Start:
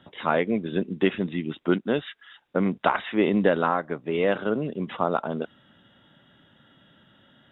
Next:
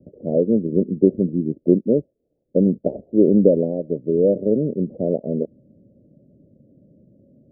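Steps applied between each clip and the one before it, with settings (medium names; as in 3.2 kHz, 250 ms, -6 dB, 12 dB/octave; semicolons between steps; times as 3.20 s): steep low-pass 590 Hz 72 dB/octave; trim +7.5 dB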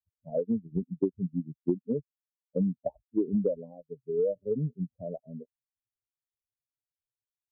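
expander on every frequency bin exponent 3; compression 6:1, threshold -26 dBFS, peak gain reduction 13 dB; trim +1.5 dB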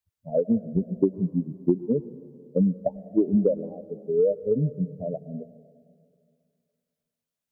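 plate-style reverb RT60 2.3 s, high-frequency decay 0.95×, pre-delay 95 ms, DRR 15.5 dB; trim +6 dB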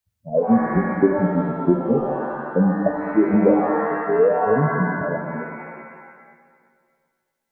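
pitch-shifted reverb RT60 1.5 s, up +7 st, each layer -2 dB, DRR 4 dB; trim +4 dB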